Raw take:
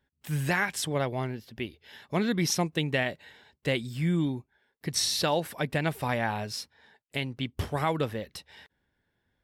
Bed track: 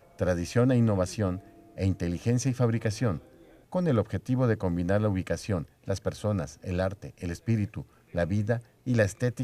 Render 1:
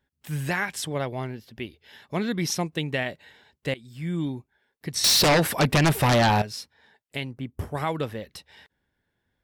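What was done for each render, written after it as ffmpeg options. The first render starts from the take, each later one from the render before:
-filter_complex "[0:a]asettb=1/sr,asplit=3[a][b][c];[a]atrim=end=5.044[d];[b]atrim=start=5.04:end=6.42,asetpts=PTS-STARTPTS,afade=t=in:d=0.004:c=qsin,afade=t=out:st=1.376:d=0.004:c=qsin,aeval=exprs='0.178*sin(PI/2*3.16*val(0)/0.178)':c=same[e];[c]atrim=start=6.416[f];[d][e]acrossfade=d=0.004:c1=hsin:c2=qsin[g];[g][f]acrossfade=d=0.004:c1=qsin:c2=hsin,asettb=1/sr,asplit=3[h][i][j];[h]atrim=end=7.314[k];[i]atrim=start=7.31:end=7.75,asetpts=PTS-STARTPTS,afade=t=in:d=0.004:c=qsin,afade=t=out:st=0.436:d=0.004:c=qsin,equalizer=f=3.7k:w=0.79:g=-14.5[l];[j]atrim=start=7.746[m];[k][l]acrossfade=d=0.004:c1=hsin:c2=qsin[n];[n][m]acrossfade=d=0.004:c1=qsin:c2=hsin,asplit=2[o][p];[o]atrim=end=3.74,asetpts=PTS-STARTPTS,afade=t=out:st=3.736:d=0.004:c=hsin:silence=0.11885[q];[p]atrim=start=3.74,asetpts=PTS-STARTPTS,afade=t=in:d=0.53:silence=0.11885[r];[q][r]concat=n=2:v=0:a=1"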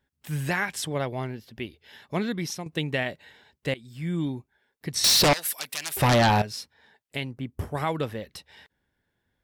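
-filter_complex "[0:a]asettb=1/sr,asplit=3[a][b][c];[a]atrim=end=5.334[d];[b]atrim=start=5.33:end=5.97,asetpts=PTS-STARTPTS,afade=t=in:d=0.004:c=qsin,afade=t=out:st=0.636:d=0.004:c=qsin,aderivative[e];[c]atrim=start=5.966[f];[d][e]acrossfade=d=0.004:c1=hsin:c2=qsin[g];[g][f]acrossfade=d=0.004:c1=qsin:c2=hsin,asplit=2[h][i];[h]atrim=end=2.66,asetpts=PTS-STARTPTS,afade=t=out:st=2.17:d=0.49:silence=0.281838[j];[i]atrim=start=2.66,asetpts=PTS-STARTPTS,afade=t=in:d=0.004:c=hsin:silence=0.281838[k];[j][k]concat=n=2:v=0:a=1"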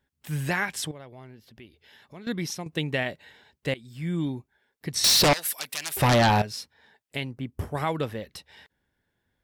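-filter_complex "[0:a]asettb=1/sr,asplit=3[a][b][c];[a]atrim=end=0.914[d];[b]atrim=start=0.91:end=2.27,asetpts=PTS-STARTPTS,afade=t=in:d=0.004:c=qsin,afade=t=out:st=1.356:d=0.004:c=qsin,acompressor=threshold=-54dB:ratio=2:attack=3.2:release=140:knee=1:detection=peak[e];[c]atrim=start=2.266[f];[d][e]acrossfade=d=0.004:c1=hsin:c2=qsin[g];[g][f]acrossfade=d=0.004:c1=qsin:c2=hsin"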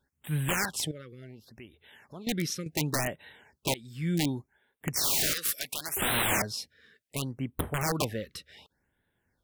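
-af "aeval=exprs='(mod(11.2*val(0)+1,2)-1)/11.2':c=same,afftfilt=real='re*(1-between(b*sr/1024,760*pow(5900/760,0.5+0.5*sin(2*PI*0.69*pts/sr))/1.41,760*pow(5900/760,0.5+0.5*sin(2*PI*0.69*pts/sr))*1.41))':imag='im*(1-between(b*sr/1024,760*pow(5900/760,0.5+0.5*sin(2*PI*0.69*pts/sr))/1.41,760*pow(5900/760,0.5+0.5*sin(2*PI*0.69*pts/sr))*1.41))':win_size=1024:overlap=0.75"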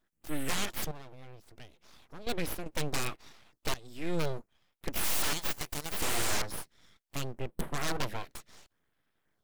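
-af "aeval=exprs='abs(val(0))':c=same"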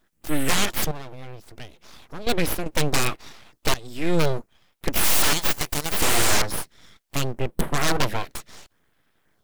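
-af "volume=11dB"

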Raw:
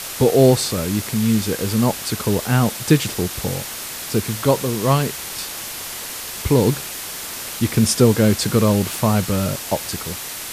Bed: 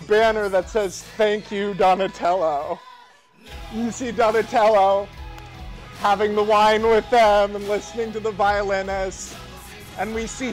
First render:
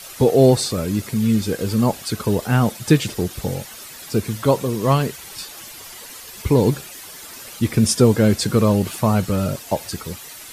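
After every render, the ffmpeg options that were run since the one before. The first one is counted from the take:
-af "afftdn=nr=11:nf=-31"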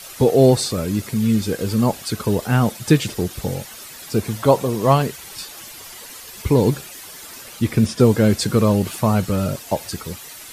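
-filter_complex "[0:a]asettb=1/sr,asplit=3[a][b][c];[a]atrim=end=4.184[d];[b]atrim=start=4.18:end=5.02,asetpts=PTS-STARTPTS,afade=t=in:d=0.004:c=qsin,afade=t=out:st=0.836:d=0.004:c=qsin,equalizer=f=740:t=o:w=0.88:g=6[e];[c]atrim=start=5.016[f];[d][e]acrossfade=d=0.004:c1=hsin:c2=qsin[g];[g][f]acrossfade=d=0.004:c1=qsin:c2=hsin,asettb=1/sr,asplit=3[h][i][j];[h]atrim=end=7.414[k];[i]atrim=start=7.41:end=8,asetpts=PTS-STARTPTS,afade=t=in:d=0.004:c=qsin,afade=t=out:st=0.586:d=0.004:c=qsin,acrossover=split=3900[l][m];[m]acompressor=threshold=-35dB:ratio=4:attack=1:release=60[n];[l][n]amix=inputs=2:normalize=0[o];[j]atrim=start=7.996[p];[k][o]acrossfade=d=0.004:c1=hsin:c2=qsin[q];[q][p]acrossfade=d=0.004:c1=qsin:c2=hsin"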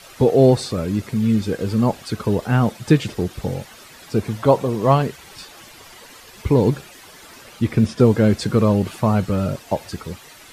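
-af "lowpass=f=2.9k:p=1"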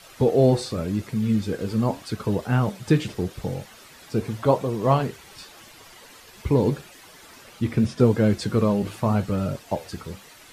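-af "flanger=delay=6.1:depth=8.9:regen=-71:speed=0.85:shape=sinusoidal"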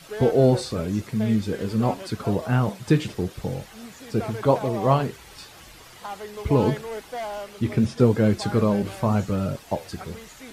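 -filter_complex "[1:a]volume=-17dB[a];[0:a][a]amix=inputs=2:normalize=0"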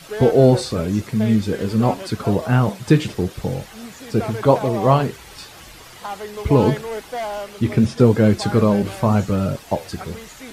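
-af "volume=5dB,alimiter=limit=-2dB:level=0:latency=1"

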